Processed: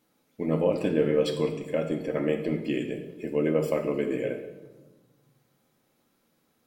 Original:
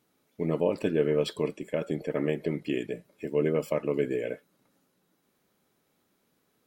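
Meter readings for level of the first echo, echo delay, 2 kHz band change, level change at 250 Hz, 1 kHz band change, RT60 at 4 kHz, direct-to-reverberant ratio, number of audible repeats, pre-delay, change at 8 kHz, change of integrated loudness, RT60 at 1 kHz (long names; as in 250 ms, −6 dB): no echo audible, no echo audible, +1.5 dB, +3.0 dB, +2.0 dB, 0.90 s, 3.0 dB, no echo audible, 4 ms, can't be measured, +2.0 dB, 1.2 s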